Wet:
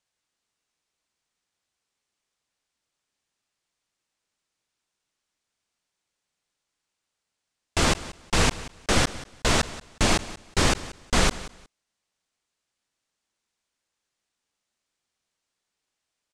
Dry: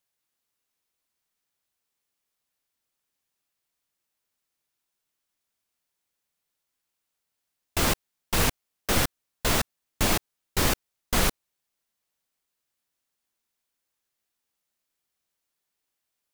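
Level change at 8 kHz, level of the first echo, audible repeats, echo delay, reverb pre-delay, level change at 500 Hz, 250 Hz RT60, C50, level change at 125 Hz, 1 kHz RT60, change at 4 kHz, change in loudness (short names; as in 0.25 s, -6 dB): +1.0 dB, -17.0 dB, 2, 0.182 s, none, +3.0 dB, none, none, +3.0 dB, none, +3.0 dB, +2.0 dB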